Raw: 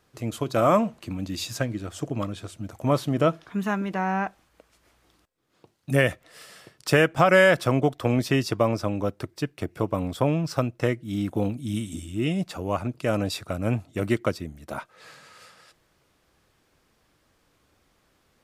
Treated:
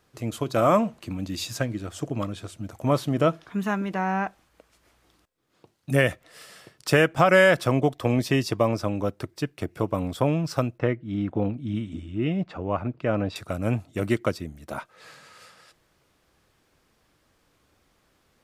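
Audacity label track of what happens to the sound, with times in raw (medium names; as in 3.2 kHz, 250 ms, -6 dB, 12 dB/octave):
7.680000	8.690000	band-stop 1.4 kHz, Q 7.9
10.780000	13.360000	low-pass 2.4 kHz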